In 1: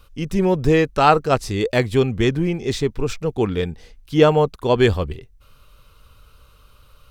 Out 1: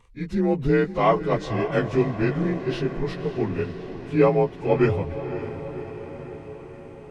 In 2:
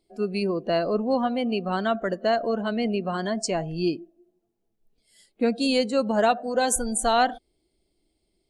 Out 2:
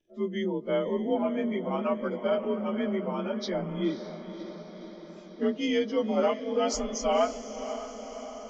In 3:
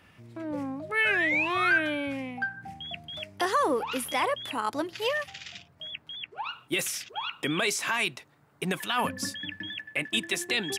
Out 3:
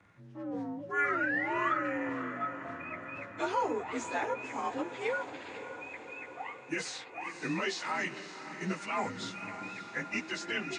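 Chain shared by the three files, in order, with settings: inharmonic rescaling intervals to 89%; high shelf 4100 Hz -6 dB; on a send: diffused feedback echo 0.556 s, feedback 64%, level -11 dB; on the sum: gain -3 dB

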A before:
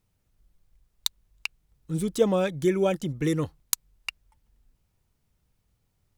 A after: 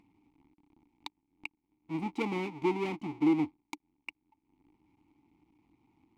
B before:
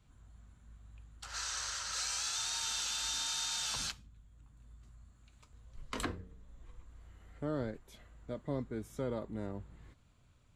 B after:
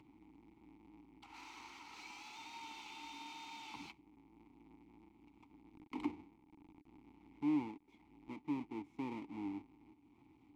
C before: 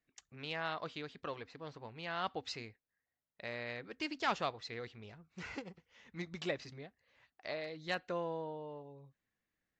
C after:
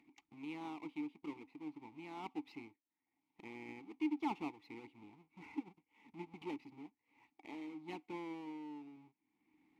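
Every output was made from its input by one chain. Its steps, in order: half-waves squared off; vowel filter u; upward compressor, threshold -57 dBFS; gain +2.5 dB

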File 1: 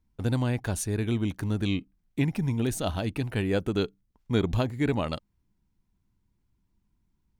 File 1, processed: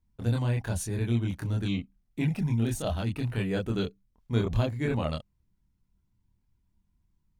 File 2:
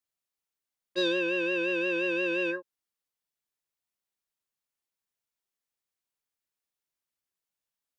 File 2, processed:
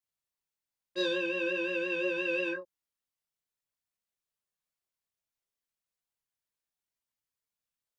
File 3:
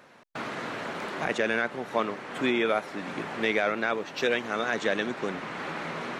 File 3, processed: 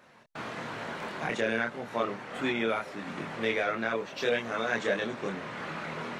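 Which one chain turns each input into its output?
chorus voices 6, 0.89 Hz, delay 26 ms, depth 1.1 ms

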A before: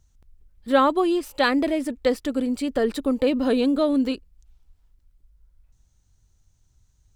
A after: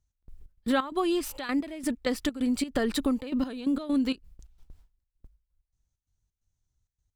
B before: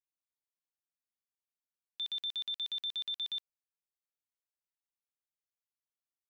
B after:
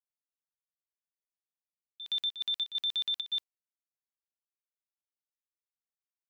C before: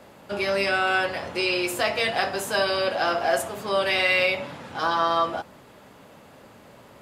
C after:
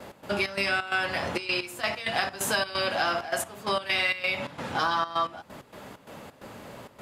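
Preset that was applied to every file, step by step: gate with hold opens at -45 dBFS; dynamic EQ 480 Hz, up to -8 dB, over -36 dBFS, Q 1.2; compressor 4:1, threshold -29 dBFS; step gate "x.xx.xx.xxxx.x.." 131 bpm -12 dB; gain +5.5 dB

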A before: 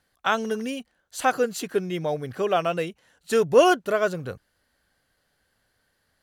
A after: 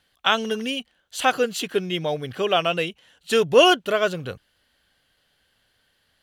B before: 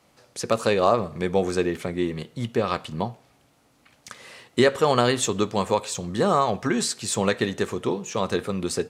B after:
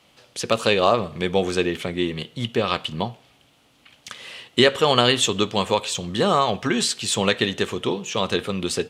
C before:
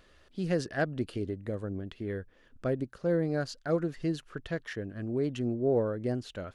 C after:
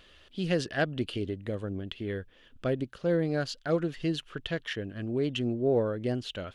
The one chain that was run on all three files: bell 3100 Hz +11.5 dB 0.74 oct; gain +1 dB

